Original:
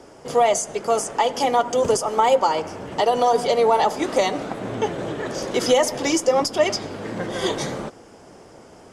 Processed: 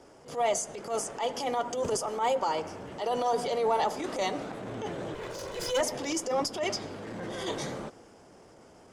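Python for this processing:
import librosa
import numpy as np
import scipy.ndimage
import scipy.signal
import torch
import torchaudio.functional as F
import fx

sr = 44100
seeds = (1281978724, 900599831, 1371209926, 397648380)

y = fx.lower_of_two(x, sr, delay_ms=2.0, at=(5.14, 5.81))
y = fx.transient(y, sr, attack_db=-11, sustain_db=1)
y = y * librosa.db_to_amplitude(-8.0)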